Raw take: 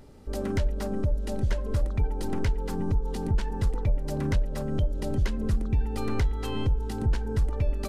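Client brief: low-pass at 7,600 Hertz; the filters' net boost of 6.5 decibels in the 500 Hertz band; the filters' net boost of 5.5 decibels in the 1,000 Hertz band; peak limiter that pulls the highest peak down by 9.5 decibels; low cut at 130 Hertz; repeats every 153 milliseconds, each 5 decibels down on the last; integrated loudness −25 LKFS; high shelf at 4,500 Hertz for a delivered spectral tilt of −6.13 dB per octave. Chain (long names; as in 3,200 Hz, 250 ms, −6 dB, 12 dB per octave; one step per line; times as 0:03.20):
high-pass filter 130 Hz
low-pass filter 7,600 Hz
parametric band 500 Hz +7.5 dB
parametric band 1,000 Hz +4 dB
high-shelf EQ 4,500 Hz +5 dB
brickwall limiter −23 dBFS
repeating echo 153 ms, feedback 56%, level −5 dB
level +5.5 dB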